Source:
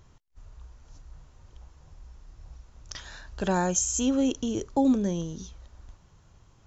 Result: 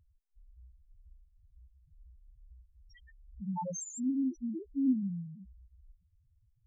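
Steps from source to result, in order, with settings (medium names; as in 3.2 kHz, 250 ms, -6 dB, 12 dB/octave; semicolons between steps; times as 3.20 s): bass shelf 190 Hz -4 dB; loudest bins only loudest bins 1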